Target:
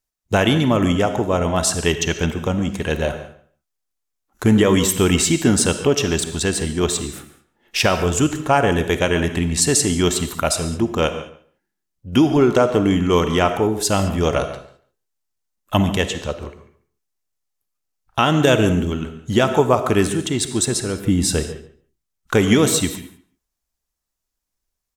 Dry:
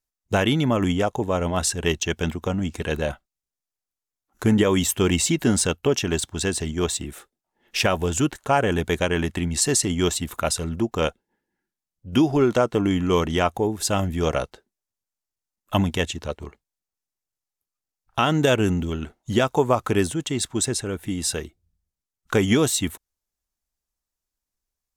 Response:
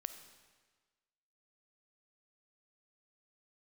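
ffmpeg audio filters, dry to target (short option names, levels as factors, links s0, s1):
-filter_complex "[0:a]asettb=1/sr,asplit=3[s0][s1][s2];[s0]atrim=end=21.014[s3];[s1]atrim=start=21.01:end=21.44,asetpts=PTS-STARTPTS,afade=t=in:d=0.004:c=qsin,afade=t=out:st=0.426:d=0.004:c=qsin,lowshelf=f=400:g=8.5[s4];[s2]atrim=start=21.436[s5];[s3][s4]acrossfade=d=0.004:c1=hsin:c2=qsin[s6];[s6][s5]acrossfade=d=0.004:c1=qsin:c2=hsin,asplit=2[s7][s8];[s8]adelay=142,lowpass=f=3300:p=1,volume=0.178,asplit=2[s9][s10];[s10]adelay=142,lowpass=f=3300:p=1,volume=0.19[s11];[s7][s9][s11]amix=inputs=3:normalize=0[s12];[1:a]atrim=start_sample=2205,afade=t=out:st=0.27:d=0.01,atrim=end_sample=12348[s13];[s12][s13]afir=irnorm=-1:irlink=0,volume=2.24"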